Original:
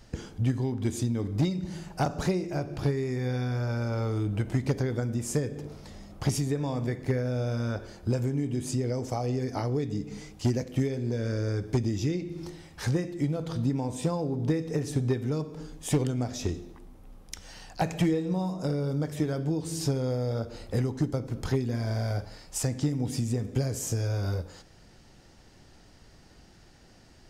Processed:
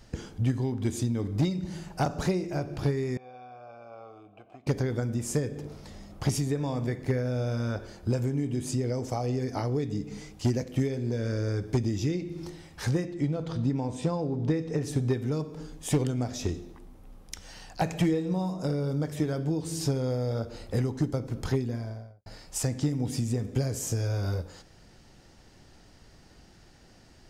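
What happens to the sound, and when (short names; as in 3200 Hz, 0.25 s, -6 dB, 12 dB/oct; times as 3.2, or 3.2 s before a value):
3.17–4.67 vowel filter a
13.05–14.83 air absorption 55 m
21.48–22.26 studio fade out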